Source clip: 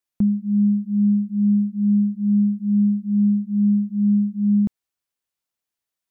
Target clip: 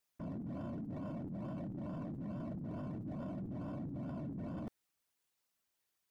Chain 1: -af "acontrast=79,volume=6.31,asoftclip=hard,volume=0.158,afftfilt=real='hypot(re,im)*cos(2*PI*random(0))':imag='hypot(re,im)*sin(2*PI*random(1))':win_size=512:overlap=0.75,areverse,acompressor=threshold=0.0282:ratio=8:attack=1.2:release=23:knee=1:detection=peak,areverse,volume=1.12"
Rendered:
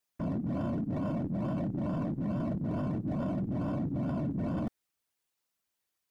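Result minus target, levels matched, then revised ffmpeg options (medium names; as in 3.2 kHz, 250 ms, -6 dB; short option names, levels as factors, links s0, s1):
compression: peak gain reduction -10 dB
-af "acontrast=79,volume=6.31,asoftclip=hard,volume=0.158,afftfilt=real='hypot(re,im)*cos(2*PI*random(0))':imag='hypot(re,im)*sin(2*PI*random(1))':win_size=512:overlap=0.75,areverse,acompressor=threshold=0.0075:ratio=8:attack=1.2:release=23:knee=1:detection=peak,areverse,volume=1.12"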